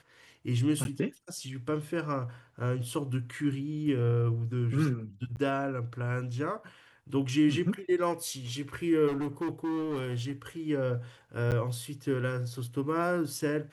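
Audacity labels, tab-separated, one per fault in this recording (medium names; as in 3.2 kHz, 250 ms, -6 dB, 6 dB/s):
0.840000	0.850000	dropout 11 ms
5.360000	5.370000	dropout 9.7 ms
9.070000	10.320000	clipped -29 dBFS
11.510000	11.520000	dropout 8.4 ms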